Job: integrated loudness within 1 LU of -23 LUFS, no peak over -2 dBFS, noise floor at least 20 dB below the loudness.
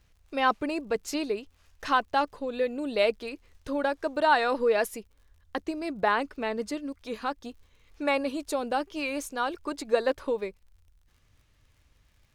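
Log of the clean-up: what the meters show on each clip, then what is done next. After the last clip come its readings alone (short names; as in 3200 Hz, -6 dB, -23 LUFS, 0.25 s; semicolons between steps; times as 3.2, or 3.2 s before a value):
ticks 49/s; loudness -29.0 LUFS; peak -10.0 dBFS; loudness target -23.0 LUFS
-> de-click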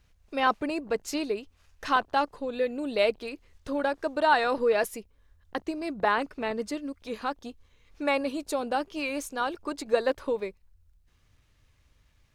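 ticks 0.24/s; loudness -29.0 LUFS; peak -10.0 dBFS; loudness target -23.0 LUFS
-> gain +6 dB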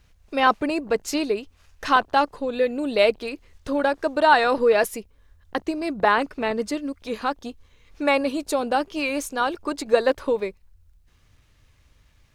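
loudness -23.0 LUFS; peak -4.0 dBFS; noise floor -60 dBFS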